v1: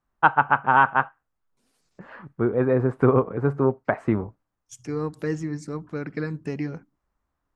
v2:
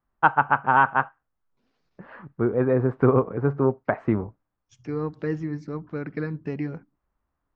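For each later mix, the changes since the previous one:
second voice: add LPF 6600 Hz 24 dB/oct; master: add air absorption 190 m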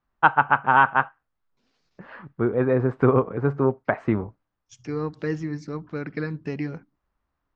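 master: add high shelf 3000 Hz +11.5 dB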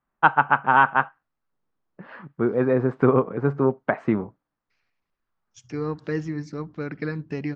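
first voice: add resonant low shelf 120 Hz -7 dB, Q 1.5; second voice: entry +0.85 s

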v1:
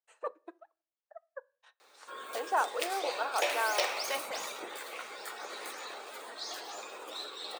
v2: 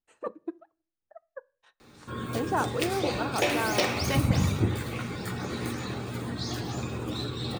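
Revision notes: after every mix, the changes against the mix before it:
background: send +7.0 dB; master: remove HPF 520 Hz 24 dB/oct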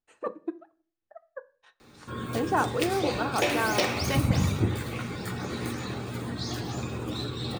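speech: send +10.0 dB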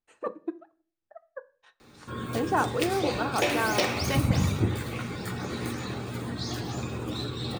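none

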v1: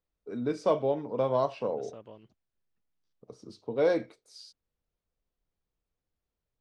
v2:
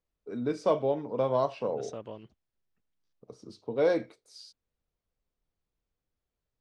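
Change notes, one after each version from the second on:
second voice +6.5 dB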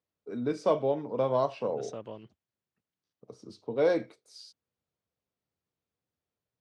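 master: add HPF 86 Hz 24 dB/oct

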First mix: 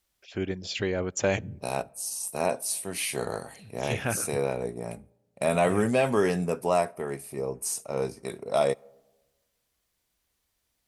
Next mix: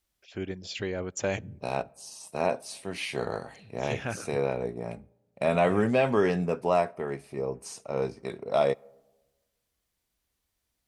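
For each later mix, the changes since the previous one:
first voice -4.0 dB; second voice: add LPF 4400 Hz 12 dB/oct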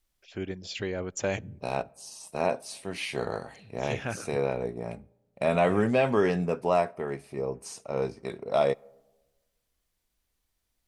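second voice: remove HPF 47 Hz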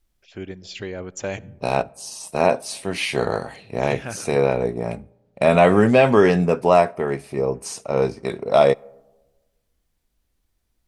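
first voice: send +10.5 dB; second voice +9.5 dB

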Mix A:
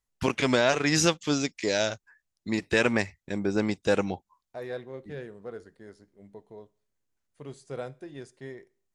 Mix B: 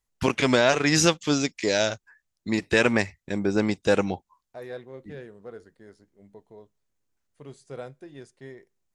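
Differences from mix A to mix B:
first voice +3.0 dB; second voice: send -11.5 dB

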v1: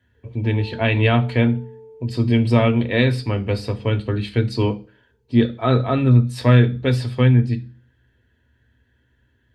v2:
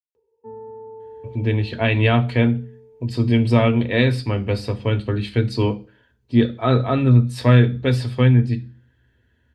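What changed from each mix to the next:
speech: entry +1.00 s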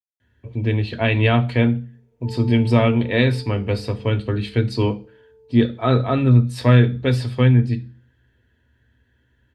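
speech: entry -0.80 s; background: entry +1.80 s

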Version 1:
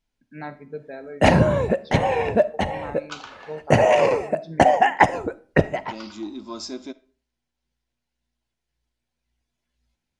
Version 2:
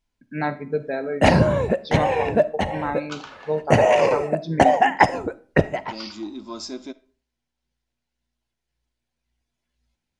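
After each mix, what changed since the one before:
first voice +10.0 dB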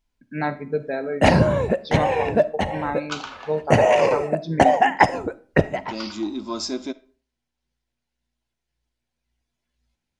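second voice +5.5 dB

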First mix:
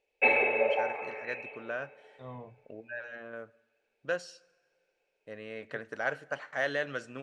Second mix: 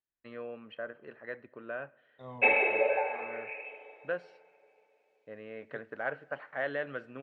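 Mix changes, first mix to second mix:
first voice: add air absorption 460 m; background: entry +2.20 s; master: add low shelf 110 Hz -7.5 dB

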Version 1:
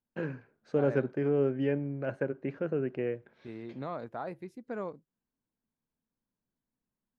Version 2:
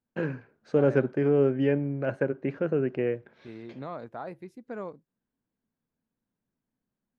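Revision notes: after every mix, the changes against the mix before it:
first voice +5.0 dB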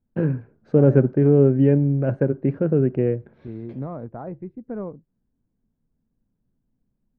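second voice: add Gaussian blur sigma 3 samples; master: add tilt -4.5 dB/oct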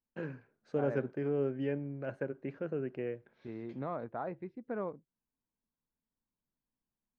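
first voice -10.0 dB; master: add tilt +4.5 dB/oct

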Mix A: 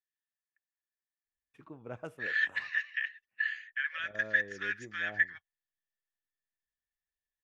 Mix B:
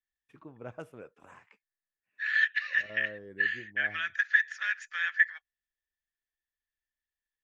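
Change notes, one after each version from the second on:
first voice: entry -1.25 s; second voice +4.0 dB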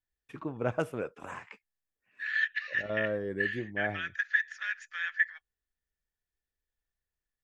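first voice +12.0 dB; second voice -3.5 dB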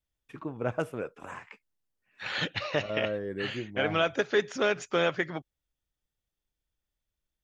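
second voice: remove ladder high-pass 1700 Hz, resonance 90%

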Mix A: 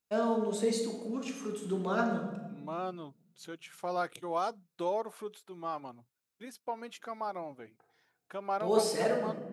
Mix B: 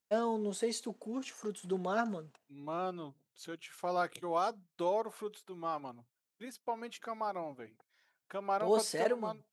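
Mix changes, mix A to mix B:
first voice +3.5 dB; reverb: off

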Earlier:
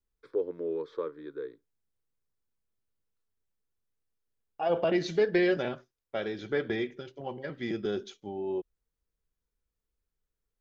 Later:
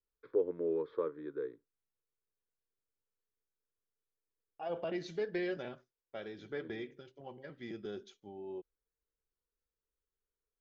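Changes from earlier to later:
first voice: add air absorption 370 m; second voice -11.0 dB

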